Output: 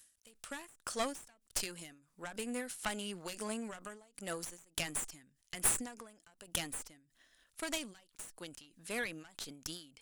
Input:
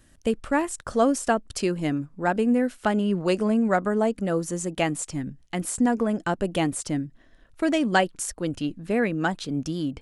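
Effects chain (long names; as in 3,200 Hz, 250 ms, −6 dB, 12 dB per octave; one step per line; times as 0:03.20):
first-order pre-emphasis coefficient 0.97
harmonic generator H 8 −16 dB, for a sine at −15 dBFS
every ending faded ahead of time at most 110 dB per second
level +6.5 dB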